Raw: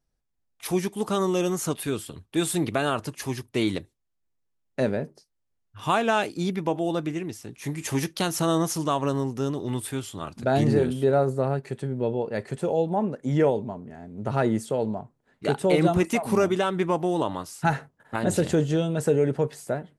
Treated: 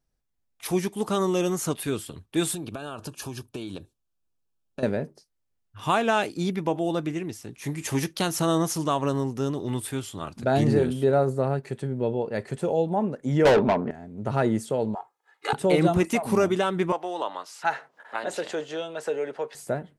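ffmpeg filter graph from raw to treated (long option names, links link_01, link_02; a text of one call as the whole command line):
ffmpeg -i in.wav -filter_complex "[0:a]asettb=1/sr,asplit=3[link_01][link_02][link_03];[link_01]atrim=end=2.544[link_04];[link_02]atrim=start=2.54:end=4.83,asetpts=PTS-STARTPTS,afade=type=in:duration=0.004:curve=qsin,afade=type=out:start_time=2.286:duration=0.004:curve=qsin,acompressor=threshold=-30dB:ratio=16:attack=3.2:release=140:knee=1:detection=peak,asuperstop=centerf=2000:order=4:qfactor=3.5[link_05];[link_03]atrim=start=4.826[link_06];[link_04][link_05]acrossfade=duration=0.004:curve1=hsin:curve2=qsin[link_07];[link_07][link_06]acrossfade=duration=0.004:curve1=qsin:curve2=hsin,asettb=1/sr,asplit=3[link_08][link_09][link_10];[link_08]atrim=end=13.454[link_11];[link_09]atrim=start=13.45:end=13.91,asetpts=PTS-STARTPTS,afade=type=in:duration=0.004:curve=qsin,afade=type=out:start_time=0.456:duration=0.004:curve=qsin,adynamicsmooth=sensitivity=7.5:basefreq=2600,asplit=2[link_12][link_13];[link_13]highpass=frequency=720:poles=1,volume=28dB,asoftclip=type=tanh:threshold=-10dB[link_14];[link_12][link_14]amix=inputs=2:normalize=0,lowpass=frequency=6400:poles=1,volume=-6dB[link_15];[link_10]atrim=start=13.906[link_16];[link_11][link_15]acrossfade=duration=0.004:curve1=hsin:curve2=qsin[link_17];[link_17][link_16]acrossfade=duration=0.004:curve1=qsin:curve2=hsin,asettb=1/sr,asplit=3[link_18][link_19][link_20];[link_18]atrim=end=14.954[link_21];[link_19]atrim=start=14.95:end=15.53,asetpts=PTS-STARTPTS,afade=type=in:duration=0.004:curve=qsin,afade=type=out:start_time=0.576:duration=0.004:curve=qsin,highpass=frequency=970:width_type=q:width=1.7,aecho=1:1:2.4:0.87,atrim=end_sample=25578[link_22];[link_20]atrim=start=15.526[link_23];[link_21][link_22]acrossfade=duration=0.004:curve1=hsin:curve2=qsin[link_24];[link_24][link_23]acrossfade=duration=0.004:curve1=qsin:curve2=hsin,asettb=1/sr,asplit=3[link_25][link_26][link_27];[link_25]atrim=end=16.924[link_28];[link_26]atrim=start=16.92:end=19.55,asetpts=PTS-STARTPTS,afade=type=in:duration=0.004:curve=qsin,afade=type=out:start_time=2.626:duration=0.004:curve=qsin,acrossover=split=490 6000:gain=0.2 1 0.224[link_29][link_30][link_31];[link_29][link_30][link_31]amix=inputs=3:normalize=0,acompressor=mode=upward:threshold=-37dB:ratio=2.5:attack=3.2:release=140:knee=2.83:detection=peak,highpass=280[link_32];[link_27]atrim=start=19.546[link_33];[link_28][link_32]acrossfade=duration=0.004:curve1=hsin:curve2=qsin[link_34];[link_34][link_33]acrossfade=duration=0.004:curve1=qsin:curve2=hsin" out.wav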